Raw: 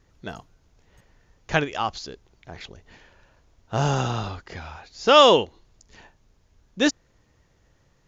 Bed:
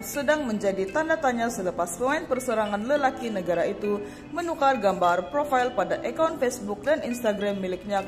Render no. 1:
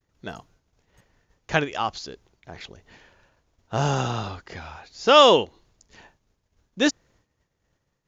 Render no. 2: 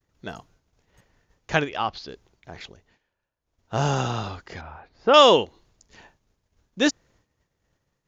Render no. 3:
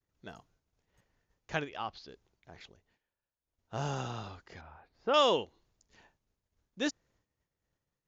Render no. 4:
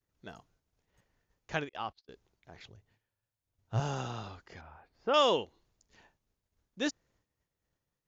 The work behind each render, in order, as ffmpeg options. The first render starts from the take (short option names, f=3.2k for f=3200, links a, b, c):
-af "agate=range=-33dB:threshold=-53dB:ratio=3:detection=peak,lowshelf=f=61:g=-7.5"
-filter_complex "[0:a]asettb=1/sr,asplit=3[a][b][c];[a]atrim=end=1.694[d];[b]atrim=start=1.69:end=2.09,asetpts=PTS-STARTPTS,afade=t=in:d=0.004:c=qsin,afade=t=out:st=0.396:d=0.004:c=qsin,lowpass=f=4.7k:w=0.5412,lowpass=f=4.7k:w=1.3066[e];[c]atrim=start=2.086[f];[d][e]acrossfade=d=0.004:c1=hsin:c2=qsin[g];[g][f]acrossfade=d=0.004:c1=qsin:c2=hsin,asettb=1/sr,asplit=3[h][i][j];[h]atrim=end=4.614[k];[i]atrim=start=4.61:end=5.14,asetpts=PTS-STARTPTS,afade=t=in:d=0.004:c=qsin,afade=t=out:st=0.526:d=0.004:c=qsin,lowpass=1.5k[l];[j]atrim=start=5.136[m];[k][l]acrossfade=d=0.004:c1=hsin:c2=qsin[n];[n][m]acrossfade=d=0.004:c1=qsin:c2=hsin,asplit=3[o][p][q];[o]atrim=end=2.99,asetpts=PTS-STARTPTS,afade=t=out:st=2.62:d=0.37:silence=0.0749894[r];[p]atrim=start=2.99:end=3.39,asetpts=PTS-STARTPTS,volume=-22.5dB[s];[q]atrim=start=3.39,asetpts=PTS-STARTPTS,afade=t=in:d=0.37:silence=0.0749894[t];[r][s][t]concat=n=3:v=0:a=1"
-af "volume=-12dB"
-filter_complex "[0:a]asettb=1/sr,asplit=3[a][b][c];[a]atrim=end=1.694[d];[b]atrim=start=1.69:end=2.09,asetpts=PTS-STARTPTS,afade=t=in:d=0.004:c=qsin,afade=t=out:st=0.396:d=0.004:c=qsin,agate=range=-35dB:threshold=-49dB:ratio=16:release=100:detection=peak[e];[c]atrim=start=2.086[f];[d][e]acrossfade=d=0.004:c1=hsin:c2=qsin[g];[g][f]acrossfade=d=0.004:c1=qsin:c2=hsin,asettb=1/sr,asplit=3[h][i][j];[h]atrim=end=2.634[k];[i]atrim=start=2.63:end=3.8,asetpts=PTS-STARTPTS,afade=t=in:d=0.004:c=qsin,afade=t=out:st=1.166:d=0.004:c=qsin,equalizer=f=110:w=2.1:g=14.5[l];[j]atrim=start=3.796[m];[k][l]acrossfade=d=0.004:c1=hsin:c2=qsin[n];[n][m]acrossfade=d=0.004:c1=qsin:c2=hsin,asettb=1/sr,asplit=3[o][p][q];[o]atrim=end=4.464[r];[p]atrim=start=4.46:end=5.29,asetpts=PTS-STARTPTS,afade=t=in:d=0.004:c=qsin,afade=t=out:st=0.826:d=0.004:c=qsin,bandreject=f=3.9k:w=14[s];[q]atrim=start=5.286[t];[r][s]acrossfade=d=0.004:c1=hsin:c2=qsin[u];[u][t]acrossfade=d=0.004:c1=qsin:c2=hsin"